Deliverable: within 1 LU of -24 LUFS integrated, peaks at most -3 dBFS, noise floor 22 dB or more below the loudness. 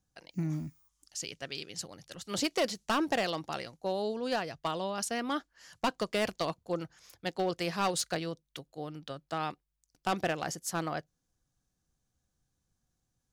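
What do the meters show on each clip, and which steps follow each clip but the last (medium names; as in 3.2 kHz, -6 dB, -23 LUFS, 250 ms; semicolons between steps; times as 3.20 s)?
clipped samples 0.6%; clipping level -23.0 dBFS; loudness -34.5 LUFS; peak level -23.0 dBFS; loudness target -24.0 LUFS
-> clip repair -23 dBFS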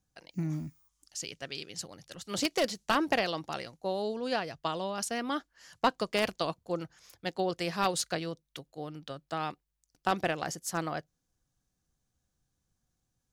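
clipped samples 0.0%; loudness -33.5 LUFS; peak level -14.0 dBFS; loudness target -24.0 LUFS
-> trim +9.5 dB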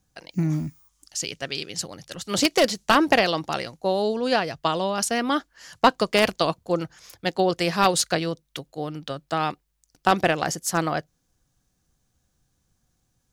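loudness -24.0 LUFS; peak level -4.5 dBFS; noise floor -72 dBFS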